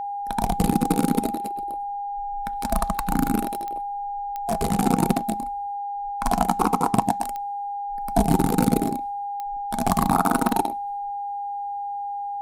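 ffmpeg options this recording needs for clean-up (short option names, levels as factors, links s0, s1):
-af "adeclick=t=4,bandreject=f=810:w=30"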